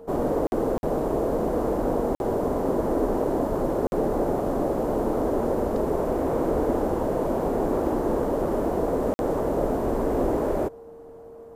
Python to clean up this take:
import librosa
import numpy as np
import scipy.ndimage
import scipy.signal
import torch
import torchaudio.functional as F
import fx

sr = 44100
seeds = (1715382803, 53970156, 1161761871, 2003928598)

y = fx.notch(x, sr, hz=460.0, q=30.0)
y = fx.fix_interpolate(y, sr, at_s=(0.47, 0.78, 2.15, 3.87, 9.14), length_ms=51.0)